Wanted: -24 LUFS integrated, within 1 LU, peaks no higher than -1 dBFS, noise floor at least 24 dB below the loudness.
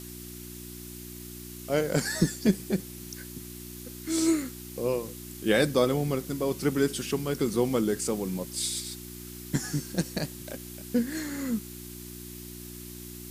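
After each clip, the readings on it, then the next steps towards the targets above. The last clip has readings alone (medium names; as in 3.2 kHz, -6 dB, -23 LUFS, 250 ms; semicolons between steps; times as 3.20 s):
hum 60 Hz; highest harmonic 360 Hz; hum level -42 dBFS; noise floor -43 dBFS; noise floor target -53 dBFS; loudness -29.0 LUFS; peak level -10.5 dBFS; loudness target -24.0 LUFS
-> de-hum 60 Hz, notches 6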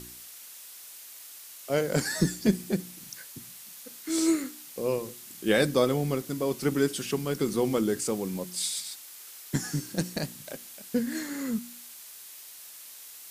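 hum not found; noise floor -47 dBFS; noise floor target -53 dBFS
-> noise reduction 6 dB, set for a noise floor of -47 dBFS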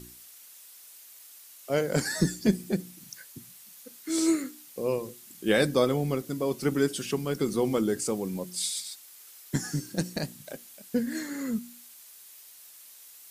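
noise floor -51 dBFS; noise floor target -53 dBFS
-> noise reduction 6 dB, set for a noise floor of -51 dBFS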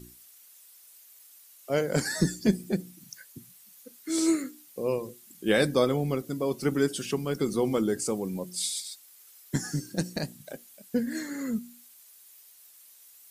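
noise floor -55 dBFS; loudness -29.0 LUFS; peak level -10.5 dBFS; loudness target -24.0 LUFS
-> trim +5 dB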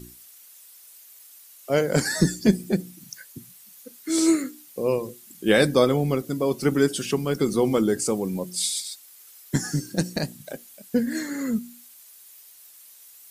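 loudness -24.0 LUFS; peak level -5.0 dBFS; noise floor -50 dBFS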